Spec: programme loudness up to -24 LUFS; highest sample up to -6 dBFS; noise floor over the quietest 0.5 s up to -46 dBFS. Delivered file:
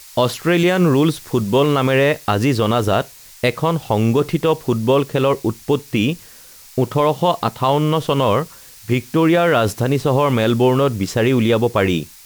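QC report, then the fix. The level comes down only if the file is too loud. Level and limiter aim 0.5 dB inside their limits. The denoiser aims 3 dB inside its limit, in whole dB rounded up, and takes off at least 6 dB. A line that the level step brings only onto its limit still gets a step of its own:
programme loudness -17.5 LUFS: fail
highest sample -5.0 dBFS: fail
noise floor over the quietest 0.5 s -42 dBFS: fail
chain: gain -7 dB

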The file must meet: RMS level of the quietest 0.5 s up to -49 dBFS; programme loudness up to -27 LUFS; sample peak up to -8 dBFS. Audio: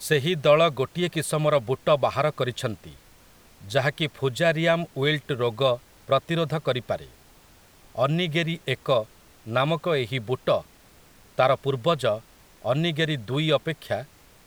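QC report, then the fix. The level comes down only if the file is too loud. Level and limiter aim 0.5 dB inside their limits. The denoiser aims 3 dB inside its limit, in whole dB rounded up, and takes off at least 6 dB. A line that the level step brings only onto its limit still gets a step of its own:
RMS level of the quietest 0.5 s -54 dBFS: OK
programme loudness -25.0 LUFS: fail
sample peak -4.5 dBFS: fail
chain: gain -2.5 dB; limiter -8.5 dBFS

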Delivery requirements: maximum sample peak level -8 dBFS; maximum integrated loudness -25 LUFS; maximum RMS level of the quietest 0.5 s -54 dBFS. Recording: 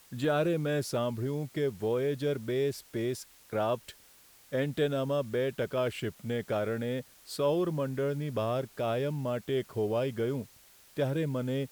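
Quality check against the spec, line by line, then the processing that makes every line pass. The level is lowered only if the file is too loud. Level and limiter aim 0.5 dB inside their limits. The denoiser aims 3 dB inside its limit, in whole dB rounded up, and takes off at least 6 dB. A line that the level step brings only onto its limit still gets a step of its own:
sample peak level -17.0 dBFS: OK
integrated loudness -32.0 LUFS: OK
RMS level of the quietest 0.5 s -58 dBFS: OK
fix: none

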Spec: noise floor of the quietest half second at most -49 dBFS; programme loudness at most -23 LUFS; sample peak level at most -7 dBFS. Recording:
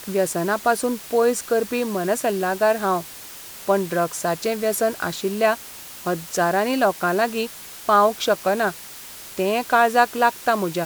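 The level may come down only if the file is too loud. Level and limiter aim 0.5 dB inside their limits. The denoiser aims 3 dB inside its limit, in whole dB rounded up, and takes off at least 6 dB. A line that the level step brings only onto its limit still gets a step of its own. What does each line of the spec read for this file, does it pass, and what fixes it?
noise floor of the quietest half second -39 dBFS: fail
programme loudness -21.5 LUFS: fail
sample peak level -3.5 dBFS: fail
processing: denoiser 11 dB, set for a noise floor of -39 dBFS; gain -2 dB; limiter -7.5 dBFS

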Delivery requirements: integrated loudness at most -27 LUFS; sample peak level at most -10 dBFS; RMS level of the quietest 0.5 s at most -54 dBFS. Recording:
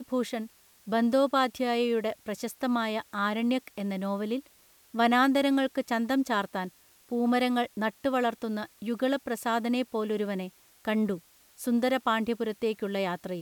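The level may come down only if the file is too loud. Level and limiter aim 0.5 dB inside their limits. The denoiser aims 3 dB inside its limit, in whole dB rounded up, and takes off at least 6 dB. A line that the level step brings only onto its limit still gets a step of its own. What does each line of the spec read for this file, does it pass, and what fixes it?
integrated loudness -29.0 LUFS: OK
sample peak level -12.0 dBFS: OK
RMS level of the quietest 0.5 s -60 dBFS: OK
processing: none

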